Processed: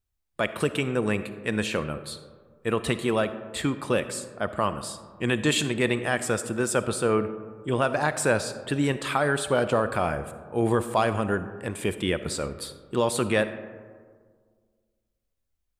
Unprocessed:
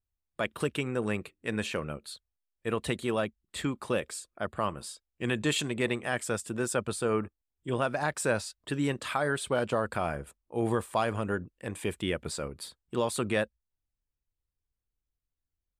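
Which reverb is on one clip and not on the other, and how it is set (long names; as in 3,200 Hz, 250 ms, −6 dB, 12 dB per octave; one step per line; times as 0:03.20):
comb and all-pass reverb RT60 1.8 s, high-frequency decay 0.35×, pre-delay 15 ms, DRR 11.5 dB
level +5 dB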